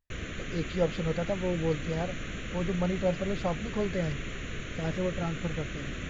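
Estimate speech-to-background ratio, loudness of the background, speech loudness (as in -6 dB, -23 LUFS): 5.5 dB, -38.0 LUFS, -32.5 LUFS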